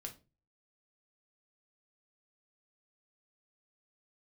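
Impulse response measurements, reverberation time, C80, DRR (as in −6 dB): 0.30 s, 21.0 dB, 2.5 dB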